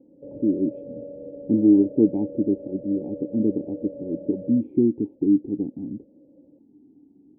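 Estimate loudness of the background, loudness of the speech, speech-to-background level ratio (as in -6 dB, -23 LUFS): -39.0 LUFS, -23.5 LUFS, 15.5 dB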